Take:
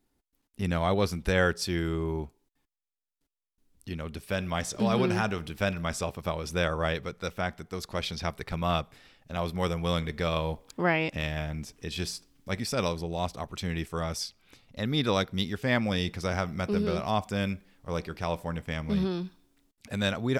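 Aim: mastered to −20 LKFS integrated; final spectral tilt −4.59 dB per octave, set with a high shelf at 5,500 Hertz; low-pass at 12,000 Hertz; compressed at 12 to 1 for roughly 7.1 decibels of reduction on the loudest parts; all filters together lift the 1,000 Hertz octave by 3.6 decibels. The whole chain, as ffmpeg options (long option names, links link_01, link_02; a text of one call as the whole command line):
ffmpeg -i in.wav -af "lowpass=12000,equalizer=frequency=1000:width_type=o:gain=4.5,highshelf=frequency=5500:gain=6.5,acompressor=threshold=-26dB:ratio=12,volume=13dB" out.wav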